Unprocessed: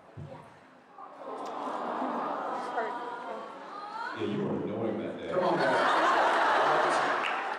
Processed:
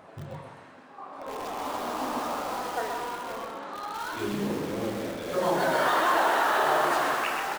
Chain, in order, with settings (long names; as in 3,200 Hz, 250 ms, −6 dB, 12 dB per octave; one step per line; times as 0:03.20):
in parallel at −6 dB: wrap-around overflow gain 33.5 dB
on the sum: loudspeakers that aren't time-aligned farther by 10 metres −11 dB, 44 metres −5 dB